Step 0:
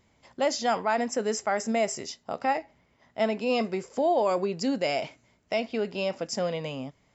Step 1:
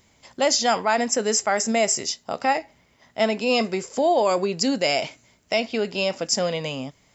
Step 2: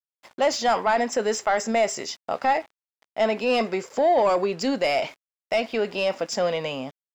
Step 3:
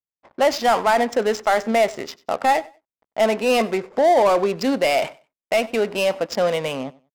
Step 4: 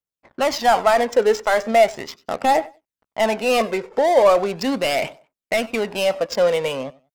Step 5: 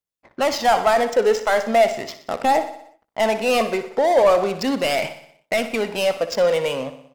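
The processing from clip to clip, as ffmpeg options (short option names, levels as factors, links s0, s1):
-af "highshelf=f=3300:g=10.5,volume=1.58"
-filter_complex "[0:a]aeval=exprs='val(0)*gte(abs(val(0)),0.00562)':c=same,asplit=2[s0][s1];[s1]highpass=f=720:p=1,volume=5.01,asoftclip=type=tanh:threshold=0.447[s2];[s0][s2]amix=inputs=2:normalize=0,lowpass=f=1400:p=1,volume=0.501,volume=0.75"
-af "adynamicsmooth=sensitivity=6.5:basefreq=600,aecho=1:1:95|190:0.0794|0.0175,volume=1.58"
-af "aphaser=in_gain=1:out_gain=1:delay=2.3:decay=0.45:speed=0.38:type=triangular"
-filter_complex "[0:a]asplit=2[s0][s1];[s1]aecho=0:1:61|122|183|244|305|366:0.224|0.128|0.0727|0.0415|0.0236|0.0135[s2];[s0][s2]amix=inputs=2:normalize=0,asoftclip=type=tanh:threshold=0.473"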